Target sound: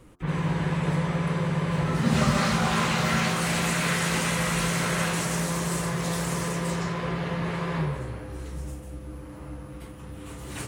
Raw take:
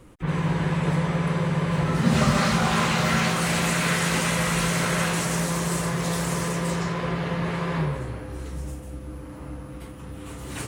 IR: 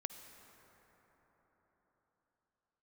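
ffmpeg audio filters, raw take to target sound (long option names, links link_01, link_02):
-af "bandreject=frequency=88.9:width_type=h:width=4,bandreject=frequency=177.8:width_type=h:width=4,bandreject=frequency=266.7:width_type=h:width=4,bandreject=frequency=355.6:width_type=h:width=4,bandreject=frequency=444.5:width_type=h:width=4,bandreject=frequency=533.4:width_type=h:width=4,bandreject=frequency=622.3:width_type=h:width=4,bandreject=frequency=711.2:width_type=h:width=4,bandreject=frequency=800.1:width_type=h:width=4,bandreject=frequency=889:width_type=h:width=4,bandreject=frequency=977.9:width_type=h:width=4,bandreject=frequency=1066.8:width_type=h:width=4,bandreject=frequency=1155.7:width_type=h:width=4,bandreject=frequency=1244.6:width_type=h:width=4,bandreject=frequency=1333.5:width_type=h:width=4,bandreject=frequency=1422.4:width_type=h:width=4,bandreject=frequency=1511.3:width_type=h:width=4,bandreject=frequency=1600.2:width_type=h:width=4,volume=-2dB"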